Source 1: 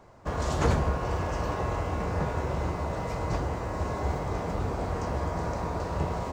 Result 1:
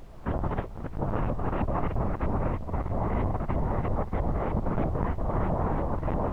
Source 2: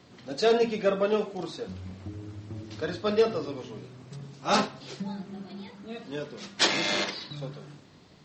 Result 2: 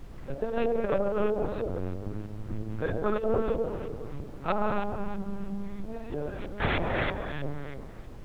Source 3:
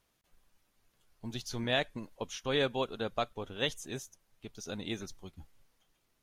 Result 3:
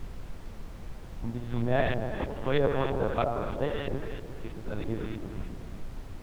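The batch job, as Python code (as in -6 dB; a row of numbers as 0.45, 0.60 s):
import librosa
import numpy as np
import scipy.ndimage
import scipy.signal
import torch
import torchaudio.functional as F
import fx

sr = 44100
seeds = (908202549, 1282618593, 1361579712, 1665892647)

y = fx.peak_eq(x, sr, hz=69.0, db=9.0, octaves=1.7)
y = fx.rev_freeverb(y, sr, rt60_s=2.1, hf_ratio=0.9, predelay_ms=15, drr_db=1.5)
y = fx.filter_lfo_lowpass(y, sr, shape='saw_up', hz=3.1, low_hz=670.0, high_hz=2600.0, q=0.98)
y = fx.lpc_vocoder(y, sr, seeds[0], excitation='pitch_kept', order=10)
y = fx.over_compress(y, sr, threshold_db=-23.0, ratio=-0.5)
y = fx.dmg_noise_colour(y, sr, seeds[1], colour='brown', level_db=-42.0)
y = librosa.util.normalize(y) * 10.0 ** (-12 / 20.0)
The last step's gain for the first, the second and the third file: -4.0, -1.5, +3.5 dB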